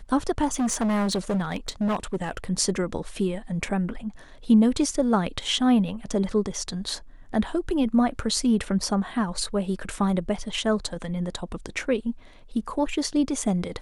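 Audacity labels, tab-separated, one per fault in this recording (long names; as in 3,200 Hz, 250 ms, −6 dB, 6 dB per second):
0.530000	2.370000	clipping −21 dBFS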